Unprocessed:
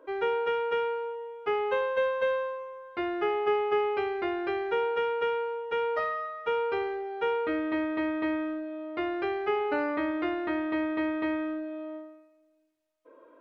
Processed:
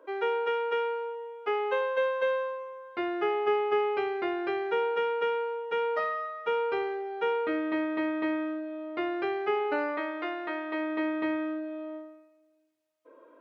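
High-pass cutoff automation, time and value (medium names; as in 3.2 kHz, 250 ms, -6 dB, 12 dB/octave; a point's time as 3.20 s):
2.19 s 310 Hz
2.60 s 150 Hz
9.49 s 150 Hz
10.04 s 470 Hz
10.66 s 470 Hz
11.26 s 120 Hz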